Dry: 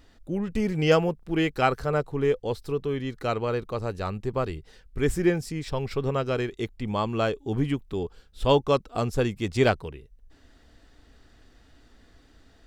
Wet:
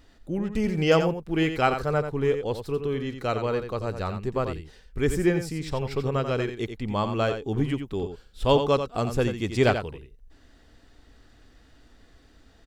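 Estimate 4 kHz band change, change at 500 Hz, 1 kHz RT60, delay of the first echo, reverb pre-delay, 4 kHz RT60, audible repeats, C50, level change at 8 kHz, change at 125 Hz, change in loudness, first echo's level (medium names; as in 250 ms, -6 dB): +0.5 dB, +0.5 dB, no reverb, 88 ms, no reverb, no reverb, 1, no reverb, +0.5 dB, +0.5 dB, +0.5 dB, -8.5 dB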